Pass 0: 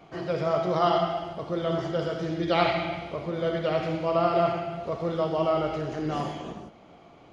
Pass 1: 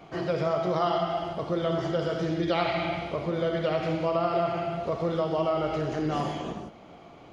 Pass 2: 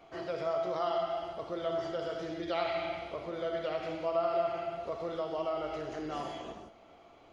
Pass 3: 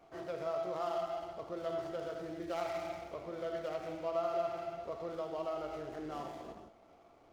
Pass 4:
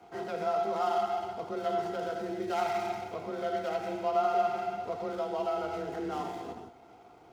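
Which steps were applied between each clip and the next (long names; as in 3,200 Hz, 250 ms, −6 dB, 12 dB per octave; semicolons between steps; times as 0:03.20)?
downward compressor 3 to 1, threshold −27 dBFS, peak gain reduction 8 dB; level +3 dB
parametric band 160 Hz −10.5 dB 1.1 octaves; tuned comb filter 670 Hz, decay 0.27 s, mix 70%; level +2.5 dB
running median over 15 samples; level −4 dB
frequency shifter +29 Hz; notch comb filter 580 Hz; level +8 dB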